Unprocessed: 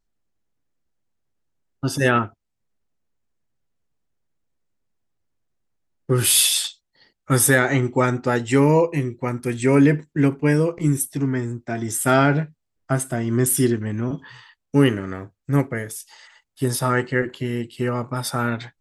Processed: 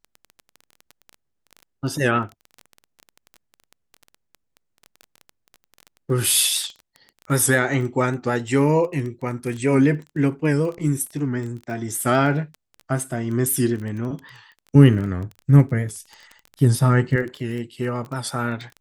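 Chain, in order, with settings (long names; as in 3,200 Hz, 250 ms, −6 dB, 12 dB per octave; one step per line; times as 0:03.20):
0:14.75–0:17.16: bass and treble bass +12 dB, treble −1 dB
surface crackle 15 per second −27 dBFS
wow of a warped record 78 rpm, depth 100 cents
level −2 dB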